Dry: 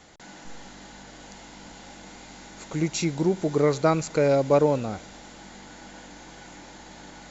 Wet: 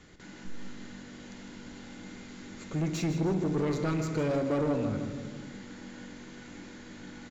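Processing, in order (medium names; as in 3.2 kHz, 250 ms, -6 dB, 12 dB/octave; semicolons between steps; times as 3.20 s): peaking EQ 750 Hz -14.5 dB 1 oct; on a send at -7.5 dB: reverberation RT60 1.3 s, pre-delay 3 ms; on the sum: saturation -27 dBFS, distortion -8 dB; treble shelf 2.9 kHz -11.5 dB; feedback delay 157 ms, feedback 46%, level -11 dB; trim +2 dB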